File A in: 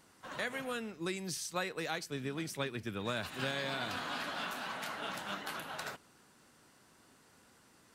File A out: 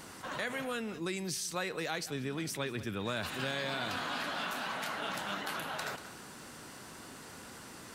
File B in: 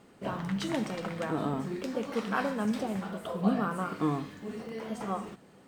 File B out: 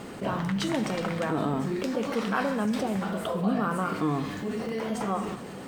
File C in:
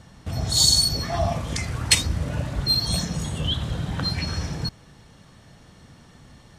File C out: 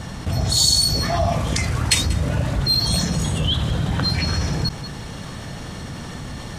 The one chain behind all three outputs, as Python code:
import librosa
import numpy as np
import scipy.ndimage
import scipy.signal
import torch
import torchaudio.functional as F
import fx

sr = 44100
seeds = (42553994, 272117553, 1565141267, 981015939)

p1 = x + fx.echo_single(x, sr, ms=187, db=-22.0, dry=0)
p2 = fx.env_flatten(p1, sr, amount_pct=50)
y = F.gain(torch.from_numpy(p2), -1.0).numpy()